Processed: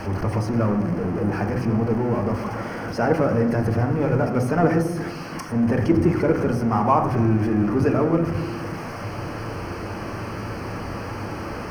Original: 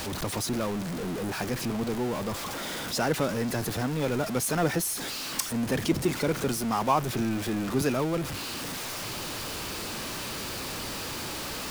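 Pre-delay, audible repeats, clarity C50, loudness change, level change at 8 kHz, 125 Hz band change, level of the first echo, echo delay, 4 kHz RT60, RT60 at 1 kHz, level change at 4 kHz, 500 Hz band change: 3 ms, none, 8.0 dB, +6.5 dB, -13.0 dB, +10.5 dB, none, none, 0.80 s, 1.0 s, -9.5 dB, +7.5 dB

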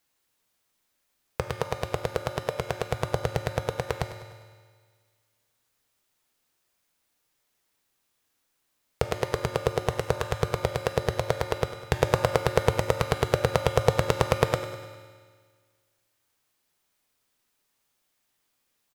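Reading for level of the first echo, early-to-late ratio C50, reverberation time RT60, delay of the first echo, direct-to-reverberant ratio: -14.5 dB, 6.0 dB, 1.7 s, 0.101 s, 4.5 dB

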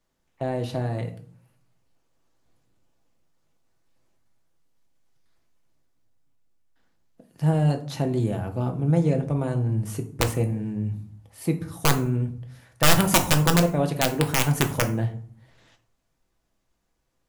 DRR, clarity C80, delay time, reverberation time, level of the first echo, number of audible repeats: 4.5 dB, 16.5 dB, none, 0.50 s, none, none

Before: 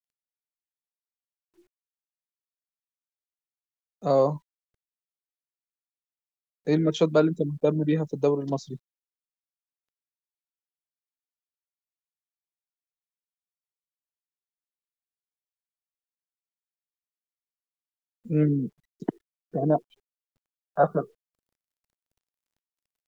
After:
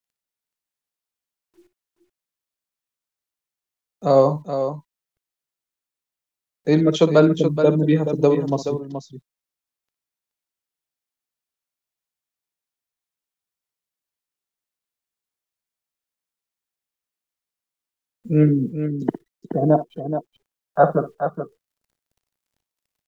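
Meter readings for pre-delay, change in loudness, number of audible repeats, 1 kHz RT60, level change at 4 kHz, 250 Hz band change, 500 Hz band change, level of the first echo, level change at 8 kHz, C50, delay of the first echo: none, +6.0 dB, 2, none, +7.0 dB, +7.0 dB, +7.0 dB, -13.0 dB, n/a, none, 59 ms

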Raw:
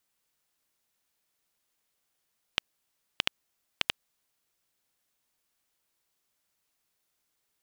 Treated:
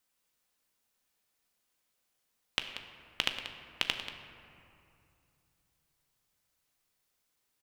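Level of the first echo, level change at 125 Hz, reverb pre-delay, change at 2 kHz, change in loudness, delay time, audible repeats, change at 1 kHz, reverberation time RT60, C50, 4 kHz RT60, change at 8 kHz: -12.0 dB, 0.0 dB, 4 ms, 0.0 dB, -2.0 dB, 0.185 s, 1, 0.0 dB, 2.6 s, 6.5 dB, 1.4 s, -0.5 dB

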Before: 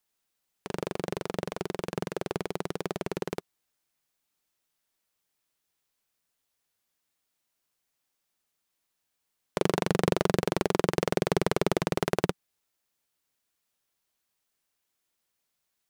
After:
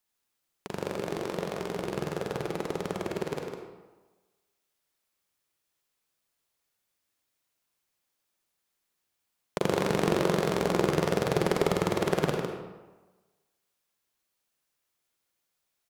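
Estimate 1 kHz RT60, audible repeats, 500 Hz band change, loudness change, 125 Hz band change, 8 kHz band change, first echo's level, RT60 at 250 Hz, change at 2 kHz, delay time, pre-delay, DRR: 1.3 s, 1, +1.0 dB, +0.5 dB, +0.5 dB, 0.0 dB, -6.5 dB, 1.2 s, +0.5 dB, 0.153 s, 36 ms, 0.5 dB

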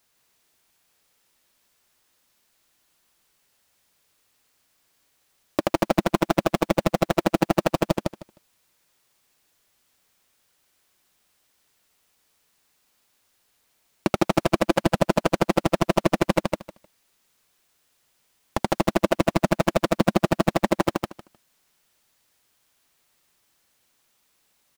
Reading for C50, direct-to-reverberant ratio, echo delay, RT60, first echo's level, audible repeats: none, none, 0.154 s, none, -3.0 dB, 3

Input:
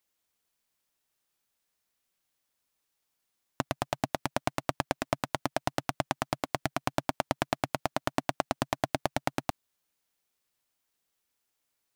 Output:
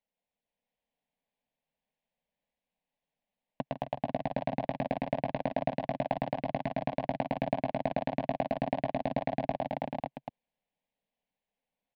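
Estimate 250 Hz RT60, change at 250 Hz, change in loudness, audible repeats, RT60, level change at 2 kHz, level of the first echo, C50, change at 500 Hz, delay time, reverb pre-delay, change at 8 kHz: none, +1.5 dB, -0.5 dB, 6, none, -6.5 dB, -8.0 dB, none, +2.5 dB, 0.124 s, none, under -30 dB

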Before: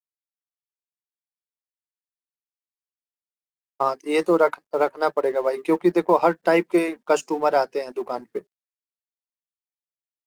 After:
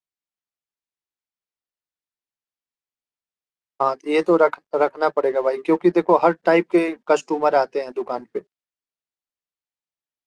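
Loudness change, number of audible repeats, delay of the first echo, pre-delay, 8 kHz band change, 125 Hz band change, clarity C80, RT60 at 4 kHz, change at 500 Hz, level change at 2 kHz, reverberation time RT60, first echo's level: +2.5 dB, none, none, none, n/a, +2.5 dB, none, none, +2.5 dB, +2.0 dB, none, none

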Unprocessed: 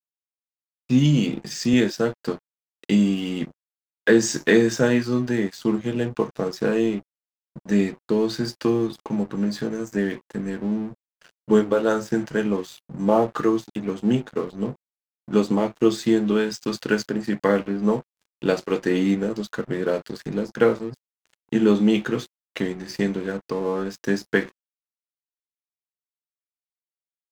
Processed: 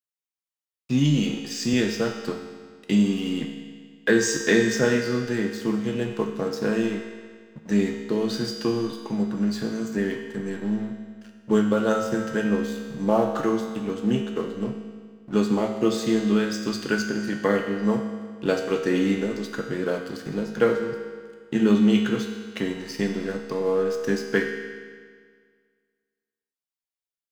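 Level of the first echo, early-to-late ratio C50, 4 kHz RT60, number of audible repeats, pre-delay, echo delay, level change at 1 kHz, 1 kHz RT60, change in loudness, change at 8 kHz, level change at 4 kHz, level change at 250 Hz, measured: none, 5.0 dB, 1.6 s, none, 4 ms, none, -1.5 dB, 1.8 s, -1.5 dB, +0.5 dB, +0.5 dB, -1.5 dB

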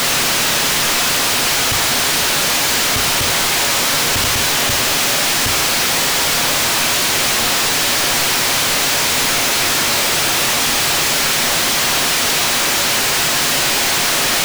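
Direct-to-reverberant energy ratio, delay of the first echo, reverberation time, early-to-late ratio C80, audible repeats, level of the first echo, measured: 4.5 dB, none, 0.50 s, 17.5 dB, none, none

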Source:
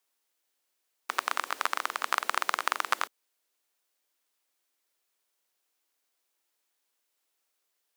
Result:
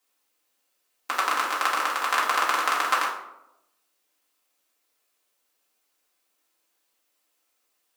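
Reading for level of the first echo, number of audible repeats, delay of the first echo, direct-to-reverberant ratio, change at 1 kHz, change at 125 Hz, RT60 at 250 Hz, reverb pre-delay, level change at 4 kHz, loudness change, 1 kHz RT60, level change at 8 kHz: none, none, none, -5.5 dB, +7.0 dB, n/a, 1.0 s, 4 ms, +5.5 dB, +6.5 dB, 0.80 s, +5.5 dB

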